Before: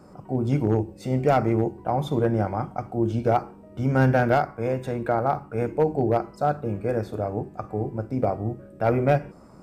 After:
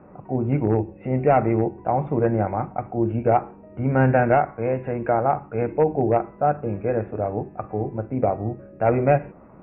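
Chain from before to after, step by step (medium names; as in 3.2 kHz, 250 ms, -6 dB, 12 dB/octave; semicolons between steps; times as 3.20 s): rippled Chebyshev low-pass 2.7 kHz, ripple 3 dB; trim +3.5 dB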